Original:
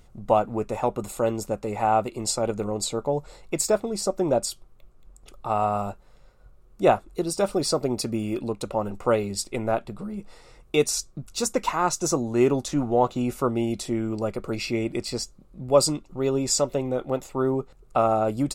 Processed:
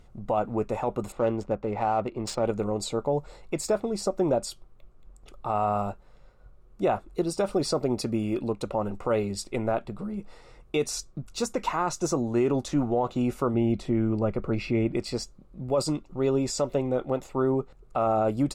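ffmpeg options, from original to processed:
ffmpeg -i in.wav -filter_complex "[0:a]asettb=1/sr,asplit=3[link_01][link_02][link_03];[link_01]atrim=end=1.124[link_04];[link_02]atrim=start=1.12:end=2.45,asetpts=PTS-STARTPTS,afade=type=in:duration=0.004:curve=qsin,afade=type=out:start_time=1.326:duration=0.004:curve=qsin,adynamicsmooth=sensitivity=5:basefreq=2100[link_05];[link_03]atrim=start=2.446[link_06];[link_04][link_05]acrossfade=duration=0.004:curve1=hsin:curve2=qsin[link_07];[link_07][link_06]acrossfade=duration=0.004:curve1=qsin:curve2=hsin,asettb=1/sr,asplit=3[link_08][link_09][link_10];[link_08]atrim=end=13.544[link_11];[link_09]atrim=start=13.54:end=14.97,asetpts=PTS-STARTPTS,afade=type=in:duration=0.004:curve=qsin,afade=type=out:start_time=1.426:duration=0.004:curve=qsin,bass=frequency=250:gain=5,treble=frequency=4000:gain=-11[link_12];[link_10]atrim=start=14.966[link_13];[link_11][link_12]acrossfade=duration=0.004:curve1=hsin:curve2=qsin[link_14];[link_14][link_13]acrossfade=duration=0.004:curve1=qsin:curve2=hsin,highshelf=frequency=11000:gain=6,alimiter=limit=-15.5dB:level=0:latency=1:release=34,aemphasis=mode=reproduction:type=50kf" out.wav

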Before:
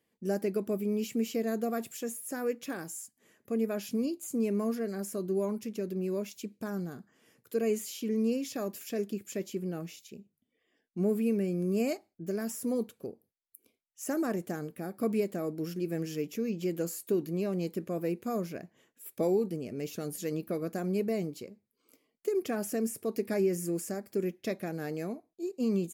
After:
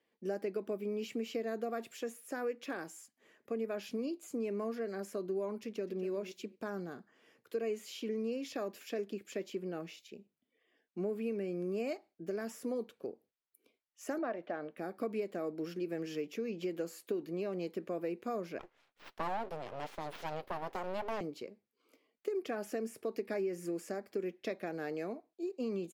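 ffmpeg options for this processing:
ffmpeg -i in.wav -filter_complex "[0:a]asplit=2[link_01][link_02];[link_02]afade=type=in:start_time=5.63:duration=0.01,afade=type=out:start_time=6.07:duration=0.01,aecho=0:1:240|480:0.251189|0.0376783[link_03];[link_01][link_03]amix=inputs=2:normalize=0,asettb=1/sr,asplit=3[link_04][link_05][link_06];[link_04]atrim=end=14.184[link_07];[link_05]atrim=start=14.18:end=14.77,asetpts=PTS-STARTPTS,afade=type=in:duration=0.004:curve=qsin,afade=type=out:start_time=0.586:duration=0.004:curve=qsin,highpass=160,equalizer=frequency=190:width_type=q:width=4:gain=-8,equalizer=frequency=400:width_type=q:width=4:gain=-9,equalizer=frequency=620:width_type=q:width=4:gain=7,lowpass=frequency=3700:width=0.5412,lowpass=frequency=3700:width=1.3066[link_08];[link_06]atrim=start=14.766[link_09];[link_07][link_08]acrossfade=duration=0.004:curve1=hsin:curve2=qsin[link_10];[link_10][link_09]acrossfade=duration=0.004:curve1=qsin:curve2=hsin,asettb=1/sr,asplit=3[link_11][link_12][link_13];[link_11]atrim=end=18.594[link_14];[link_12]atrim=start=18.59:end=21.21,asetpts=PTS-STARTPTS,afade=type=in:duration=0.004:curve=qsin,afade=type=out:start_time=2.616:duration=0.004:curve=qsin,aeval=exprs='abs(val(0))':channel_layout=same[link_15];[link_13]atrim=start=21.206[link_16];[link_14][link_15]acrossfade=duration=0.004:curve1=hsin:curve2=qsin[link_17];[link_17][link_16]acrossfade=duration=0.004:curve1=qsin:curve2=hsin,acrossover=split=280 4700:gain=0.224 1 0.178[link_18][link_19][link_20];[link_18][link_19][link_20]amix=inputs=3:normalize=0,acompressor=threshold=-35dB:ratio=3,volume=1dB" out.wav

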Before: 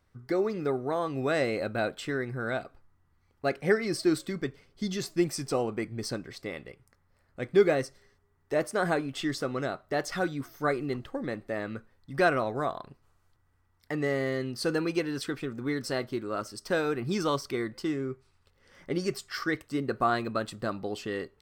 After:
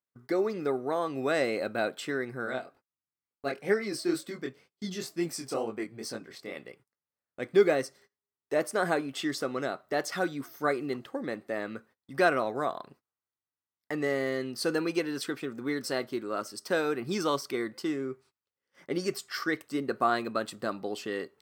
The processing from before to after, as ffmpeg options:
ffmpeg -i in.wav -filter_complex "[0:a]asplit=3[link_01][link_02][link_03];[link_01]afade=type=out:start_time=2.45:duration=0.02[link_04];[link_02]flanger=delay=18:depth=6.1:speed=2.1,afade=type=in:start_time=2.45:duration=0.02,afade=type=out:start_time=6.55:duration=0.02[link_05];[link_03]afade=type=in:start_time=6.55:duration=0.02[link_06];[link_04][link_05][link_06]amix=inputs=3:normalize=0,highpass=200,agate=range=-25dB:threshold=-56dB:ratio=16:detection=peak,highshelf=frequency=11000:gain=6" out.wav

